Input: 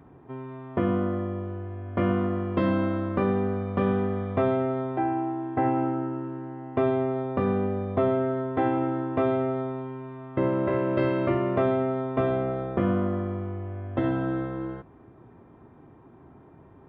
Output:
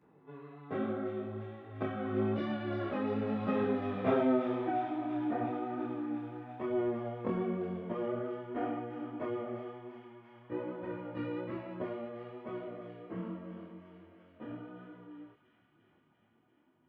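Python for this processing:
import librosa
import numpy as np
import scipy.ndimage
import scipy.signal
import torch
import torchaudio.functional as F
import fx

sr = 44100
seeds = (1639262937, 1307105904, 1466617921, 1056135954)

p1 = fx.doppler_pass(x, sr, speed_mps=29, closest_m=18.0, pass_at_s=4.11)
p2 = scipy.signal.sosfilt(scipy.signal.butter(2, 170.0, 'highpass', fs=sr, output='sos'), p1)
p3 = fx.peak_eq(p2, sr, hz=810.0, db=-3.5, octaves=2.6)
p4 = fx.over_compress(p3, sr, threshold_db=-41.0, ratio=-0.5)
p5 = p3 + (p4 * librosa.db_to_amplitude(1.5))
p6 = fx.chorus_voices(p5, sr, voices=2, hz=1.1, base_ms=15, depth_ms=4.0, mix_pct=65)
p7 = fx.vibrato(p6, sr, rate_hz=7.3, depth_cents=20.0)
p8 = fx.doubler(p7, sr, ms=27.0, db=-4.5)
y = p8 + fx.echo_wet_highpass(p8, sr, ms=346, feedback_pct=75, hz=2500.0, wet_db=-5, dry=0)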